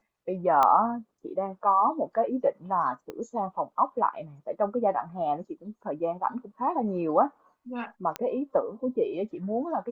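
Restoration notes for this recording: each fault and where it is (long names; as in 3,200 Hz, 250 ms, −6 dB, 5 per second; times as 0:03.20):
0:00.63: click −11 dBFS
0:03.10: click −24 dBFS
0:08.16: click −15 dBFS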